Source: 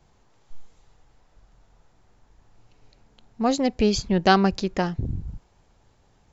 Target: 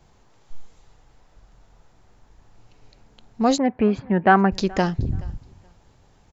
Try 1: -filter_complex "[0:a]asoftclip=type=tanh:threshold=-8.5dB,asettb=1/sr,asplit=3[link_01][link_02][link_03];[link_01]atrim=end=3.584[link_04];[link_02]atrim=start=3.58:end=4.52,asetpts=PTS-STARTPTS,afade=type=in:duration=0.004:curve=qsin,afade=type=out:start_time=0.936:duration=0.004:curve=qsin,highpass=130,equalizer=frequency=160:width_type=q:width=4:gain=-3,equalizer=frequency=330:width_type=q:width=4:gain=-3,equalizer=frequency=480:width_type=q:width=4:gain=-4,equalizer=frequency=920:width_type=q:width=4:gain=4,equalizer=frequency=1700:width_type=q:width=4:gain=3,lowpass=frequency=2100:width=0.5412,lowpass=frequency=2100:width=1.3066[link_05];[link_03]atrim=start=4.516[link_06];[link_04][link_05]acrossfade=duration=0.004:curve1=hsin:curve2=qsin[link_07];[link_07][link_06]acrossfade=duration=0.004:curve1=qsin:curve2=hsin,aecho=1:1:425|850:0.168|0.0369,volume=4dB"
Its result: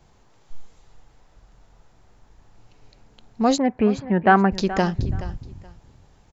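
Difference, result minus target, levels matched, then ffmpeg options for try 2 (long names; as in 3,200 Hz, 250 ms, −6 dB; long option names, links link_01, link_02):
echo-to-direct +9.5 dB
-filter_complex "[0:a]asoftclip=type=tanh:threshold=-8.5dB,asettb=1/sr,asplit=3[link_01][link_02][link_03];[link_01]atrim=end=3.584[link_04];[link_02]atrim=start=3.58:end=4.52,asetpts=PTS-STARTPTS,afade=type=in:duration=0.004:curve=qsin,afade=type=out:start_time=0.936:duration=0.004:curve=qsin,highpass=130,equalizer=frequency=160:width_type=q:width=4:gain=-3,equalizer=frequency=330:width_type=q:width=4:gain=-3,equalizer=frequency=480:width_type=q:width=4:gain=-4,equalizer=frequency=920:width_type=q:width=4:gain=4,equalizer=frequency=1700:width_type=q:width=4:gain=3,lowpass=frequency=2100:width=0.5412,lowpass=frequency=2100:width=1.3066[link_05];[link_03]atrim=start=4.516[link_06];[link_04][link_05]acrossfade=duration=0.004:curve1=hsin:curve2=qsin[link_07];[link_07][link_06]acrossfade=duration=0.004:curve1=qsin:curve2=hsin,aecho=1:1:425|850:0.0562|0.0124,volume=4dB"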